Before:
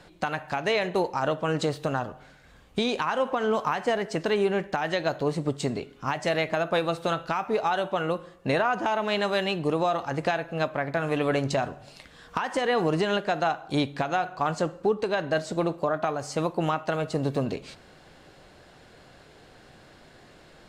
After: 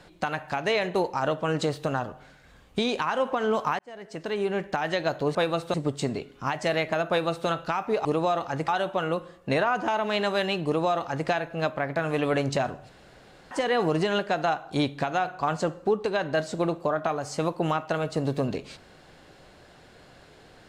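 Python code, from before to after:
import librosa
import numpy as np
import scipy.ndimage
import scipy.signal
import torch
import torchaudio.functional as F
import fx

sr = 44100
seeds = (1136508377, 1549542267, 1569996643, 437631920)

y = fx.edit(x, sr, fx.fade_in_span(start_s=3.79, length_s=0.95),
    fx.duplicate(start_s=6.7, length_s=0.39, to_s=5.35),
    fx.duplicate(start_s=9.63, length_s=0.63, to_s=7.66),
    fx.room_tone_fill(start_s=11.87, length_s=0.62), tone=tone)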